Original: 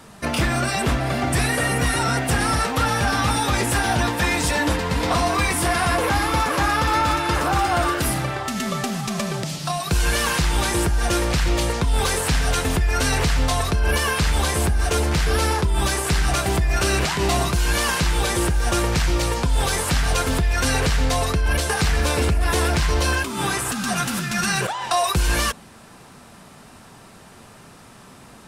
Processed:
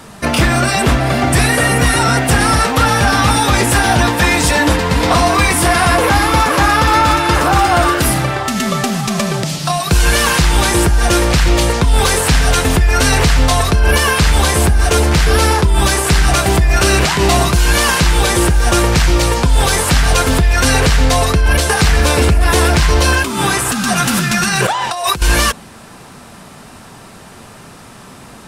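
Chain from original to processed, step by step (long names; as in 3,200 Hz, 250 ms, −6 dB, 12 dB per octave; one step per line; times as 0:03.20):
0:24.04–0:25.22: compressor whose output falls as the input rises −23 dBFS, ratio −0.5
level +8.5 dB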